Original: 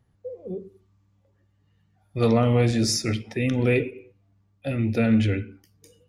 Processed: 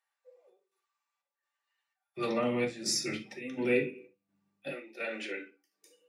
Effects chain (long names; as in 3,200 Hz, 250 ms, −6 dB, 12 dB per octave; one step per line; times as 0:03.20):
high-pass filter 790 Hz 24 dB per octave, from 0:02.17 130 Hz, from 0:04.68 360 Hz
square-wave tremolo 1.4 Hz, depth 65%, duty 70%
convolution reverb, pre-delay 3 ms, DRR −3 dB
level −8 dB